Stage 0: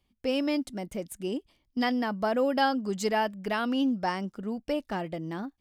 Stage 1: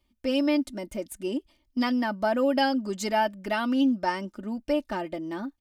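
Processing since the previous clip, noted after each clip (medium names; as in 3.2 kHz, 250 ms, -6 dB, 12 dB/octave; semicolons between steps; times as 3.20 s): comb 3.3 ms, depth 67%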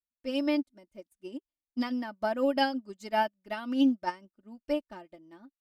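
upward expansion 2.5:1, over -44 dBFS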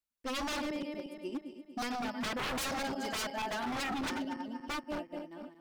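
backward echo that repeats 118 ms, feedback 68%, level -9.5 dB; wavefolder -32.5 dBFS; trim +2 dB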